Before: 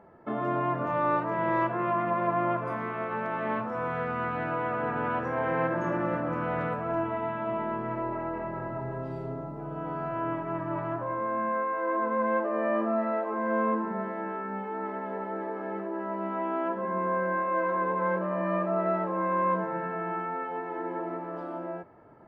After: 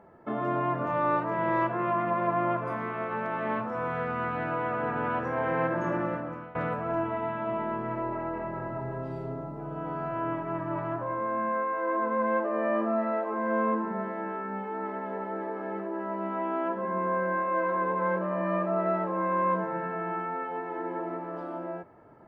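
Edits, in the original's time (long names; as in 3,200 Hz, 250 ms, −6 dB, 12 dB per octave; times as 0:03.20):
0:05.98–0:06.55: fade out, to −20.5 dB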